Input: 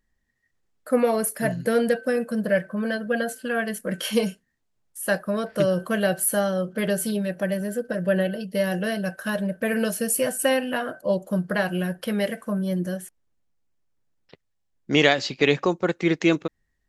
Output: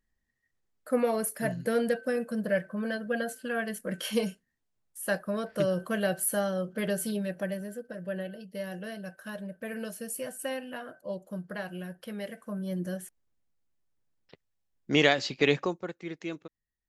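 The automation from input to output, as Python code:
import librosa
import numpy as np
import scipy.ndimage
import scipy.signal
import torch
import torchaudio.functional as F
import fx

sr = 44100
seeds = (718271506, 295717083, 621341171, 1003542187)

y = fx.gain(x, sr, db=fx.line((7.37, -6.0), (7.85, -13.0), (12.23, -13.0), (13.03, -4.5), (15.56, -4.5), (15.97, -17.0)))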